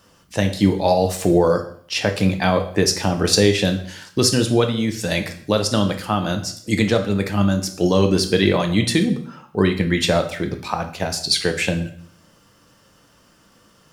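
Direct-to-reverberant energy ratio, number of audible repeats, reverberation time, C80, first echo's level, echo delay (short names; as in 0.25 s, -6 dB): 5.0 dB, none, 0.55 s, 14.5 dB, none, none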